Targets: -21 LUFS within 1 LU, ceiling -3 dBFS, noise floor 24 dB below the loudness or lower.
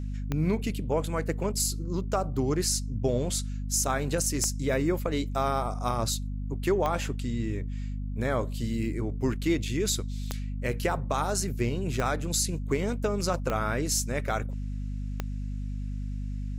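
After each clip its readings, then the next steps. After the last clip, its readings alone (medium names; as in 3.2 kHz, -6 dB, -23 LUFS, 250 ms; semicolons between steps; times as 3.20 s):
clicks found 7; hum 50 Hz; highest harmonic 250 Hz; hum level -30 dBFS; loudness -29.5 LUFS; peak level -14.0 dBFS; loudness target -21.0 LUFS
-> de-click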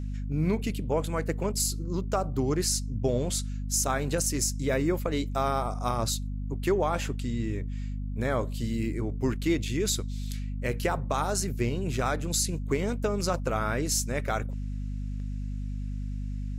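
clicks found 0; hum 50 Hz; highest harmonic 250 Hz; hum level -30 dBFS
-> de-hum 50 Hz, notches 5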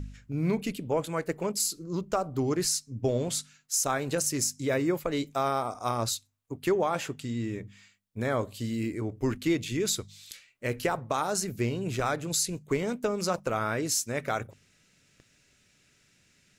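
hum not found; loudness -30.0 LUFS; peak level -16.0 dBFS; loudness target -21.0 LUFS
-> trim +9 dB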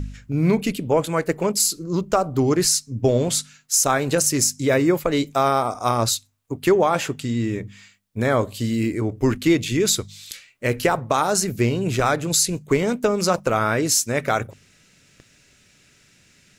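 loudness -21.0 LUFS; peak level -7.0 dBFS; noise floor -57 dBFS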